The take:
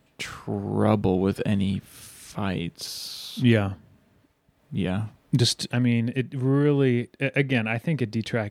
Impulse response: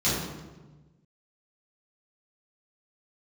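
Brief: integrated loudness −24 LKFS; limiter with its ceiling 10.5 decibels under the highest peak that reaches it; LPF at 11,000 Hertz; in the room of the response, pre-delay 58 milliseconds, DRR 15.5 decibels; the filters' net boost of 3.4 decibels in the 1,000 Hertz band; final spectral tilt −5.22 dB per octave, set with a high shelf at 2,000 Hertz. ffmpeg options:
-filter_complex "[0:a]lowpass=11000,equalizer=frequency=1000:width_type=o:gain=3.5,highshelf=frequency=2000:gain=5,alimiter=limit=-15dB:level=0:latency=1,asplit=2[link_01][link_02];[1:a]atrim=start_sample=2205,adelay=58[link_03];[link_02][link_03]afir=irnorm=-1:irlink=0,volume=-28.5dB[link_04];[link_01][link_04]amix=inputs=2:normalize=0,volume=3dB"

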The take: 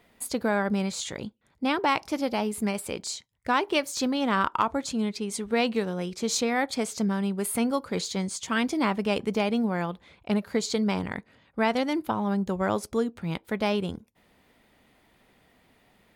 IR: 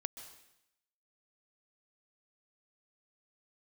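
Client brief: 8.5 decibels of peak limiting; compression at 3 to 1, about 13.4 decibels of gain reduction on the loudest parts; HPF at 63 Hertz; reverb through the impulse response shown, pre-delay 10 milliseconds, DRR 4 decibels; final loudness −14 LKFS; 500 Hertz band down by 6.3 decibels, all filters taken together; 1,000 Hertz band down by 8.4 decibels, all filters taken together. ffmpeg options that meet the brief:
-filter_complex "[0:a]highpass=63,equalizer=frequency=500:width_type=o:gain=-5.5,equalizer=frequency=1000:width_type=o:gain=-9,acompressor=threshold=-43dB:ratio=3,alimiter=level_in=11.5dB:limit=-24dB:level=0:latency=1,volume=-11.5dB,asplit=2[link_01][link_02];[1:a]atrim=start_sample=2205,adelay=10[link_03];[link_02][link_03]afir=irnorm=-1:irlink=0,volume=-2.5dB[link_04];[link_01][link_04]amix=inputs=2:normalize=0,volume=29dB"

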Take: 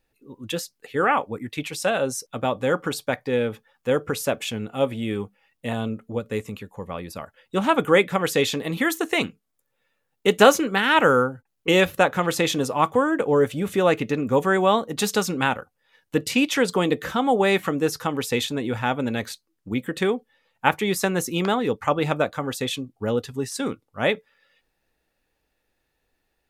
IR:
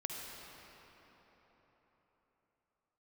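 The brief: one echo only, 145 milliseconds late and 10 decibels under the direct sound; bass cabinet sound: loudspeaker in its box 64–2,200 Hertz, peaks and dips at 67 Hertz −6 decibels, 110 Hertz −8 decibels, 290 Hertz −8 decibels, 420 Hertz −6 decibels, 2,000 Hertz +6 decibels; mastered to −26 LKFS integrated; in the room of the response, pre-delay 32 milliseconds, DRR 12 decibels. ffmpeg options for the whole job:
-filter_complex "[0:a]aecho=1:1:145:0.316,asplit=2[link_01][link_02];[1:a]atrim=start_sample=2205,adelay=32[link_03];[link_02][link_03]afir=irnorm=-1:irlink=0,volume=-13dB[link_04];[link_01][link_04]amix=inputs=2:normalize=0,highpass=frequency=64:width=0.5412,highpass=frequency=64:width=1.3066,equalizer=frequency=67:width_type=q:width=4:gain=-6,equalizer=frequency=110:width_type=q:width=4:gain=-8,equalizer=frequency=290:width_type=q:width=4:gain=-8,equalizer=frequency=420:width_type=q:width=4:gain=-6,equalizer=frequency=2000:width_type=q:width=4:gain=6,lowpass=frequency=2200:width=0.5412,lowpass=frequency=2200:width=1.3066,volume=-1.5dB"

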